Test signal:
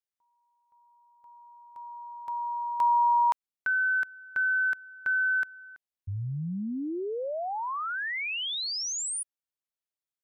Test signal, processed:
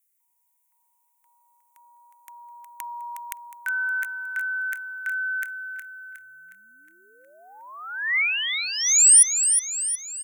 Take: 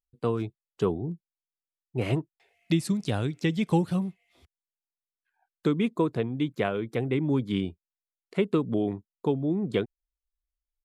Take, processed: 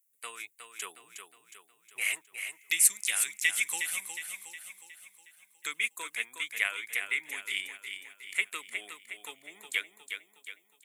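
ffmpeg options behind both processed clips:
ffmpeg -i in.wav -af "aexciter=amount=7.7:drive=8.1:freq=6700,highpass=frequency=2100:width_type=q:width=3.7,aecho=1:1:363|726|1089|1452|1815|2178:0.422|0.211|0.105|0.0527|0.0264|0.0132" out.wav

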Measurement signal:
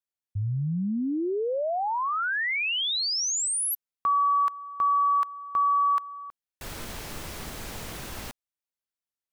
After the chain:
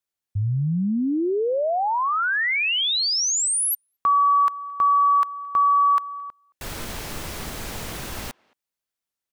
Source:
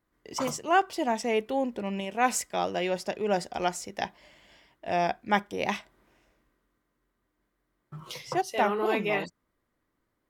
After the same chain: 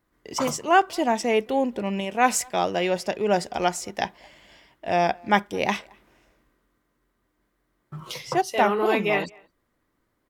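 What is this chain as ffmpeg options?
ffmpeg -i in.wav -filter_complex "[0:a]asplit=2[link_01][link_02];[link_02]adelay=220,highpass=300,lowpass=3400,asoftclip=type=hard:threshold=-18dB,volume=-27dB[link_03];[link_01][link_03]amix=inputs=2:normalize=0,volume=5dB" out.wav

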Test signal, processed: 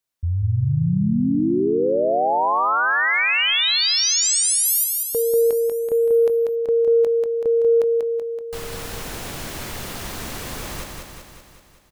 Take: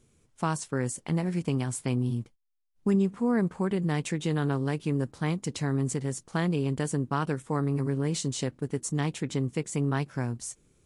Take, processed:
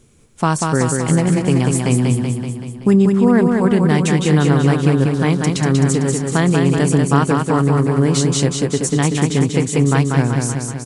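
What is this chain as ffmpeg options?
ffmpeg -i in.wav -af "aecho=1:1:190|380|570|760|950|1140|1330|1520|1710:0.631|0.379|0.227|0.136|0.0818|0.0491|0.0294|0.0177|0.0106,acontrast=67,volume=5.5dB" out.wav

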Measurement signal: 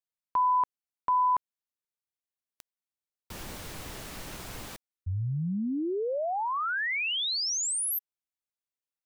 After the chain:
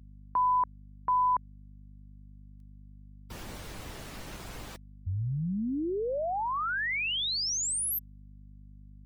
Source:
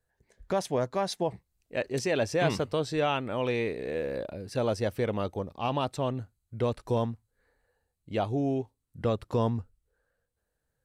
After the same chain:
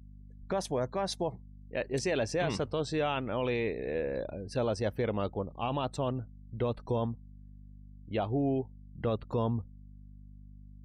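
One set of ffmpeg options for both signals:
ffmpeg -i in.wav -af "alimiter=limit=-21dB:level=0:latency=1:release=15,afftdn=noise_reduction=28:noise_floor=-52,aeval=exprs='val(0)+0.00398*(sin(2*PI*50*n/s)+sin(2*PI*2*50*n/s)/2+sin(2*PI*3*50*n/s)/3+sin(2*PI*4*50*n/s)/4+sin(2*PI*5*50*n/s)/5)':channel_layout=same,volume=-1dB" out.wav

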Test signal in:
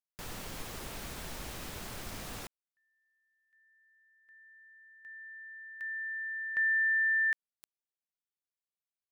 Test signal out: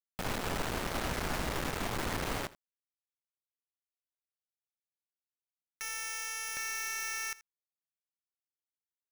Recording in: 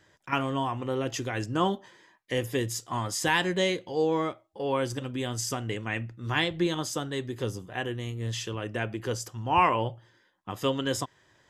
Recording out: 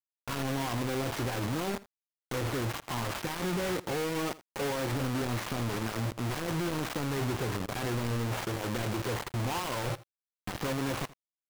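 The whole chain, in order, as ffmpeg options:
ffmpeg -i in.wav -filter_complex "[0:a]adynamicequalizer=threshold=0.00708:dfrequency=2700:dqfactor=0.93:tfrequency=2700:tqfactor=0.93:attack=5:release=100:ratio=0.417:range=2.5:mode=cutabove:tftype=bell,acompressor=threshold=-39dB:ratio=16:attack=2.2:release=22:knee=1:detection=peak,aresample=16000,aeval=exprs='0.015*(abs(mod(val(0)/0.015+3,4)-2)-1)':channel_layout=same,aresample=44100,acrusher=samples=11:mix=1:aa=0.000001,adynamicsmooth=sensitivity=0.5:basefreq=2000,acrusher=bits=6:mix=0:aa=0.000001,asplit=2[link_01][link_02];[link_02]aecho=0:1:81:0.106[link_03];[link_01][link_03]amix=inputs=2:normalize=0,volume=8.5dB" out.wav

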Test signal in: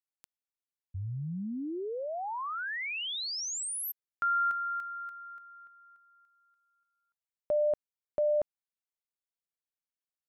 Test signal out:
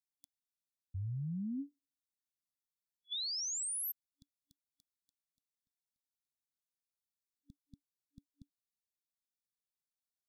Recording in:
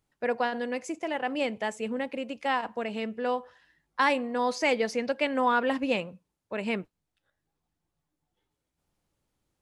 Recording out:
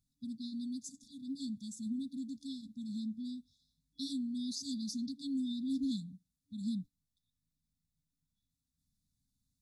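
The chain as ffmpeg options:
ffmpeg -i in.wav -af "afftfilt=real='re*(1-between(b*sr/4096,290,3400))':imag='im*(1-between(b*sr/4096,290,3400))':win_size=4096:overlap=0.75,volume=-2.5dB" out.wav

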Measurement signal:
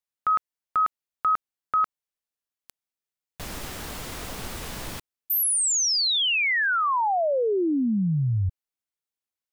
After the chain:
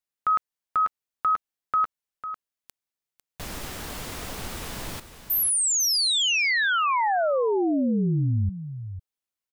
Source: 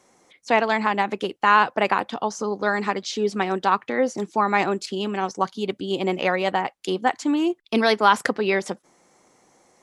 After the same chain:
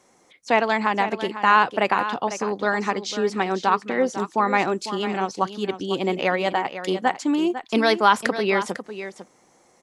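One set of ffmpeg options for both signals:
ffmpeg -i in.wav -af "aecho=1:1:500:0.266" out.wav

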